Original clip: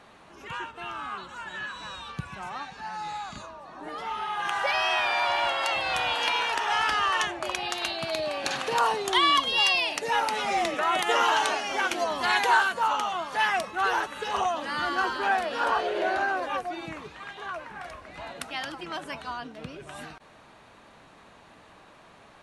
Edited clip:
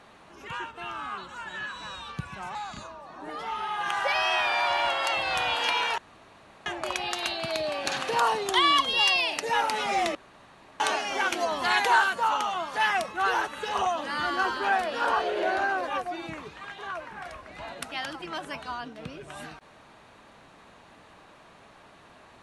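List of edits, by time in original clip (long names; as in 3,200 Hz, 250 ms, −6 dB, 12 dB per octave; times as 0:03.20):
0:02.55–0:03.14: remove
0:06.57–0:07.25: fill with room tone
0:10.74–0:11.39: fill with room tone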